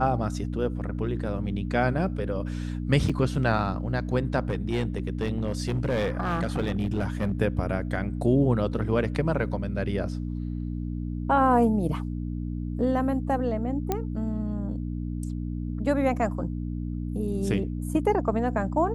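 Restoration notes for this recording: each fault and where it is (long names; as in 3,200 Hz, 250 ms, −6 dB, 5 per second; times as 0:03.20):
mains hum 60 Hz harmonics 5 −31 dBFS
0:03.09–0:03.10: drop-out 5.2 ms
0:04.50–0:07.32: clipping −21 dBFS
0:13.92: click −12 dBFS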